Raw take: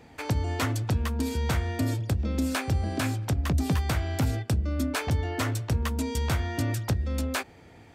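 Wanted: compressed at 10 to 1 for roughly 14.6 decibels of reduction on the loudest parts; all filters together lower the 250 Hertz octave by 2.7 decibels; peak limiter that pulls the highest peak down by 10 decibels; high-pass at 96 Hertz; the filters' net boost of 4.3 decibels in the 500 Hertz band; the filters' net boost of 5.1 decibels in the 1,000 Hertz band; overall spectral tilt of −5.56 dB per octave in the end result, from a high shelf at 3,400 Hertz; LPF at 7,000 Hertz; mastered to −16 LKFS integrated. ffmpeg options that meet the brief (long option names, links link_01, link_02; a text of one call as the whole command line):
ffmpeg -i in.wav -af "highpass=96,lowpass=7000,equalizer=frequency=250:width_type=o:gain=-4.5,equalizer=frequency=500:width_type=o:gain=5,equalizer=frequency=1000:width_type=o:gain=5.5,highshelf=frequency=3400:gain=-3,acompressor=threshold=-38dB:ratio=10,volume=27.5dB,alimiter=limit=-5.5dB:level=0:latency=1" out.wav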